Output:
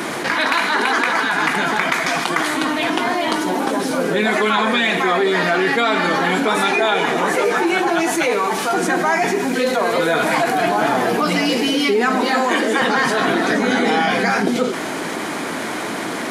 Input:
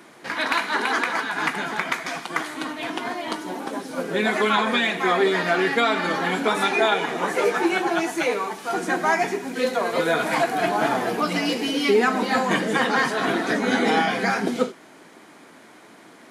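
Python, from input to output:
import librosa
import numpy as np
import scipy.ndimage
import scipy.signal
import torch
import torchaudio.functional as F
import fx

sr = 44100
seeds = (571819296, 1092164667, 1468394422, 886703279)

y = fx.steep_highpass(x, sr, hz=220.0, slope=96, at=(12.21, 12.82))
y = fx.env_flatten(y, sr, amount_pct=70)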